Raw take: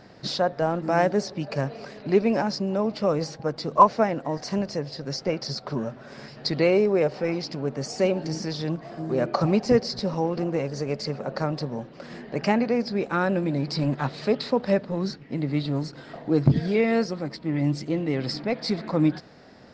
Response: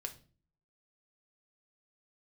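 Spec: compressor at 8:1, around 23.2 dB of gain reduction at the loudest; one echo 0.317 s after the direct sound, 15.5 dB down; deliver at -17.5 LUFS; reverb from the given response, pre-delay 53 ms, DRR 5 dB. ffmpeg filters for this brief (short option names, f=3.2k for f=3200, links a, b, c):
-filter_complex "[0:a]acompressor=threshold=-35dB:ratio=8,aecho=1:1:317:0.168,asplit=2[a][b];[1:a]atrim=start_sample=2205,adelay=53[c];[b][c]afir=irnorm=-1:irlink=0,volume=-3dB[d];[a][d]amix=inputs=2:normalize=0,volume=20.5dB"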